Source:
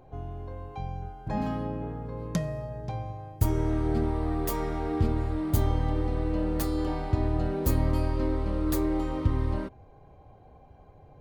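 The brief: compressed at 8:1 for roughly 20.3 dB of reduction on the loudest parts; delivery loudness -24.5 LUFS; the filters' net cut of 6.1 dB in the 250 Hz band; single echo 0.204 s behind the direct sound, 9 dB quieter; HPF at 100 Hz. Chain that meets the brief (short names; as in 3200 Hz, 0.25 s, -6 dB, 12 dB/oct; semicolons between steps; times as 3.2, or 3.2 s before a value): HPF 100 Hz; bell 250 Hz -8.5 dB; compressor 8:1, threshold -46 dBFS; echo 0.204 s -9 dB; gain +25 dB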